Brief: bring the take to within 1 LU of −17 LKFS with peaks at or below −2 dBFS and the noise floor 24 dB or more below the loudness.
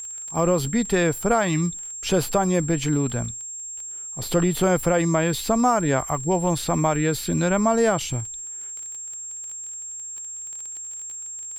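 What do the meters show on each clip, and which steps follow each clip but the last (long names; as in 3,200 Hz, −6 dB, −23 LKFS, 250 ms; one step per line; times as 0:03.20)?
crackle rate 21 per second; interfering tone 7,500 Hz; level of the tone −32 dBFS; integrated loudness −24.0 LKFS; sample peak −9.0 dBFS; target loudness −17.0 LKFS
→ click removal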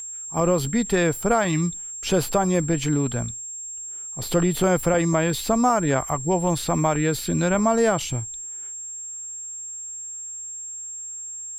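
crackle rate 0.26 per second; interfering tone 7,500 Hz; level of the tone −32 dBFS
→ notch filter 7,500 Hz, Q 30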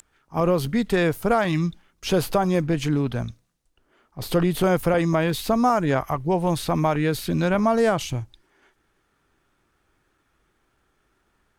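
interfering tone none found; integrated loudness −22.5 LKFS; sample peak −9.5 dBFS; target loudness −17.0 LKFS
→ level +5.5 dB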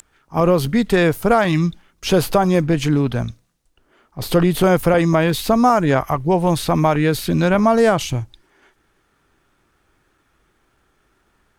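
integrated loudness −17.0 LKFS; sample peak −4.0 dBFS; background noise floor −64 dBFS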